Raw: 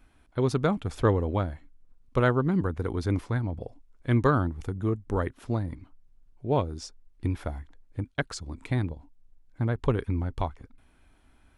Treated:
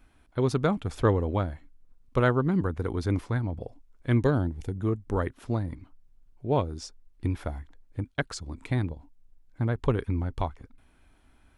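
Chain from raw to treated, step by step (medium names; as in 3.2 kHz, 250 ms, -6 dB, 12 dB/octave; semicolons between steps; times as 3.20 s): 4.23–4.76 s: peaking EQ 1.2 kHz -13.5 dB 0.52 oct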